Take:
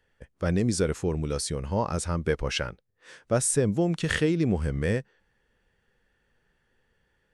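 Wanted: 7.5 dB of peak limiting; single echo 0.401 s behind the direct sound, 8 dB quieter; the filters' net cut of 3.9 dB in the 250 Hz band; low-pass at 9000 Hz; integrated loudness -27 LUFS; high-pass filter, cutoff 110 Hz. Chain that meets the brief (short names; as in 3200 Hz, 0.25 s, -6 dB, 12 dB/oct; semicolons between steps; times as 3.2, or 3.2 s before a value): HPF 110 Hz; LPF 9000 Hz; bell 250 Hz -5.5 dB; limiter -18 dBFS; echo 0.401 s -8 dB; gain +3.5 dB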